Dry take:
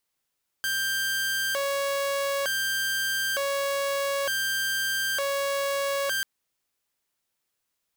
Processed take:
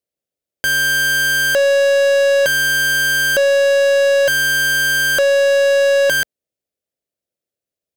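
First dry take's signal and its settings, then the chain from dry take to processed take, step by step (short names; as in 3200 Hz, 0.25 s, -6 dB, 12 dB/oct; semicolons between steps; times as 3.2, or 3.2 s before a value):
siren hi-lo 557–1580 Hz 0.55/s saw -22.5 dBFS 5.59 s
HPF 44 Hz 24 dB/oct; resonant low shelf 750 Hz +8 dB, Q 3; sample leveller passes 5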